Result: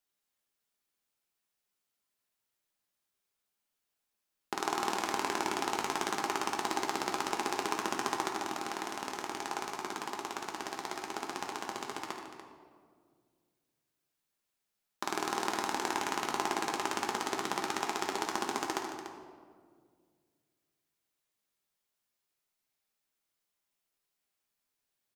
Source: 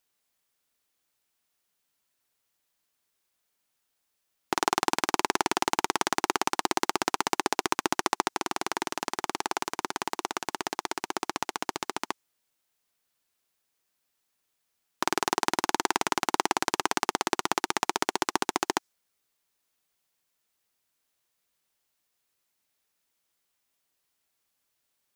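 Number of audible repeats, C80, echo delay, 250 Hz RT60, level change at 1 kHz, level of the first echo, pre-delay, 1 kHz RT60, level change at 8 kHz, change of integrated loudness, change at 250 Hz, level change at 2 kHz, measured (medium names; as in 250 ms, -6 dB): 3, 4.0 dB, 76 ms, 2.5 s, -5.5 dB, -10.0 dB, 5 ms, 1.7 s, -7.0 dB, -6.0 dB, -5.0 dB, -6.0 dB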